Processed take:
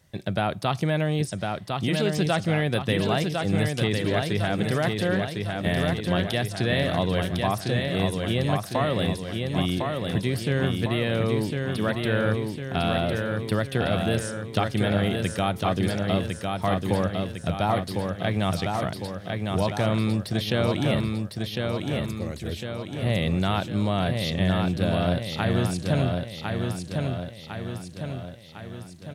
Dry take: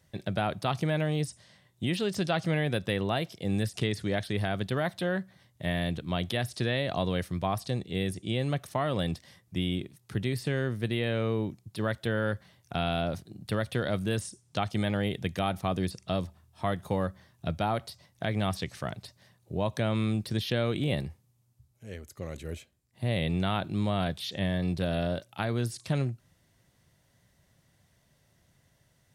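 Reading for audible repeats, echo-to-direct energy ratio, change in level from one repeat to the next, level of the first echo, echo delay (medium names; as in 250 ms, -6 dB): 6, -2.5 dB, -5.5 dB, -4.0 dB, 1054 ms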